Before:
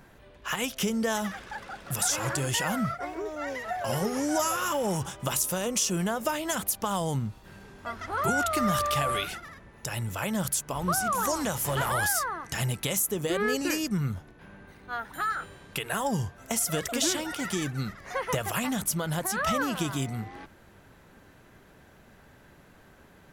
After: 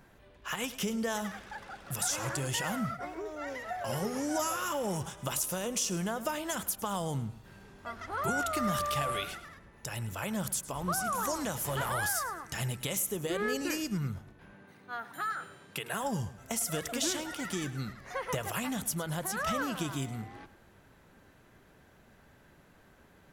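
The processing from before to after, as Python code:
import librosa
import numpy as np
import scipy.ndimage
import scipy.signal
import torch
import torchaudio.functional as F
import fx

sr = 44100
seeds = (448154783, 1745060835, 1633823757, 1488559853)

y = fx.highpass(x, sr, hz=110.0, slope=24, at=(14.53, 16.02))
y = fx.echo_feedback(y, sr, ms=106, feedback_pct=33, wet_db=-16)
y = y * 10.0 ** (-5.0 / 20.0)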